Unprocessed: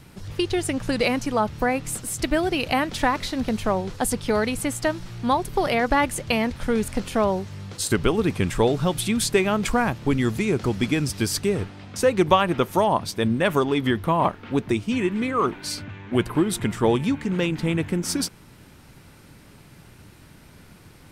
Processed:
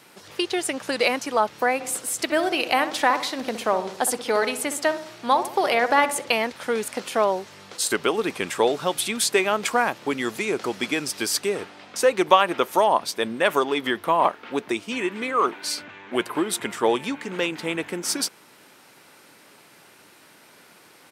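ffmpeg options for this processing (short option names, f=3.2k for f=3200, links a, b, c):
-filter_complex "[0:a]asplit=3[a][b][c];[a]afade=t=out:st=1.79:d=0.02[d];[b]asplit=2[e][f];[f]adelay=64,lowpass=f=1.4k:p=1,volume=-9.5dB,asplit=2[g][h];[h]adelay=64,lowpass=f=1.4k:p=1,volume=0.53,asplit=2[i][j];[j]adelay=64,lowpass=f=1.4k:p=1,volume=0.53,asplit=2[k][l];[l]adelay=64,lowpass=f=1.4k:p=1,volume=0.53,asplit=2[m][n];[n]adelay=64,lowpass=f=1.4k:p=1,volume=0.53,asplit=2[o][p];[p]adelay=64,lowpass=f=1.4k:p=1,volume=0.53[q];[e][g][i][k][m][o][q]amix=inputs=7:normalize=0,afade=t=in:st=1.79:d=0.02,afade=t=out:st=6.31:d=0.02[r];[c]afade=t=in:st=6.31:d=0.02[s];[d][r][s]amix=inputs=3:normalize=0,highpass=430,volume=2.5dB"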